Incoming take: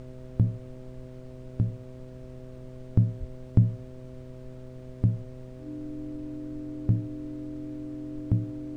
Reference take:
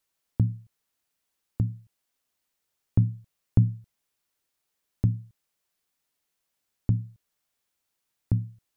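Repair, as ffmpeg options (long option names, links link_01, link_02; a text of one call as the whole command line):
ffmpeg -i in.wav -filter_complex "[0:a]bandreject=frequency=127.5:width_type=h:width=4,bandreject=frequency=255:width_type=h:width=4,bandreject=frequency=382.5:width_type=h:width=4,bandreject=frequency=510:width_type=h:width=4,bandreject=frequency=637.5:width_type=h:width=4,bandreject=frequency=300:width=30,asplit=3[link_01][link_02][link_03];[link_01]afade=type=out:start_time=3.19:duration=0.02[link_04];[link_02]highpass=frequency=140:width=0.5412,highpass=frequency=140:width=1.3066,afade=type=in:start_time=3.19:duration=0.02,afade=type=out:start_time=3.31:duration=0.02[link_05];[link_03]afade=type=in:start_time=3.31:duration=0.02[link_06];[link_04][link_05][link_06]amix=inputs=3:normalize=0,afftdn=noise_reduction=30:noise_floor=-43" out.wav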